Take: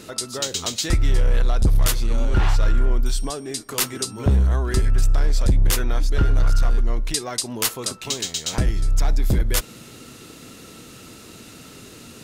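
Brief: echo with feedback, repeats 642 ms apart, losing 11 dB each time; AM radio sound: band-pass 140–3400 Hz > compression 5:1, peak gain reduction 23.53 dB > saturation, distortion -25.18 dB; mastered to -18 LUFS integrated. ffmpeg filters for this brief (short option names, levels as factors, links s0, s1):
-af "highpass=140,lowpass=3400,aecho=1:1:642|1284|1926:0.282|0.0789|0.0221,acompressor=threshold=0.00631:ratio=5,asoftclip=threshold=0.0266,volume=26.6"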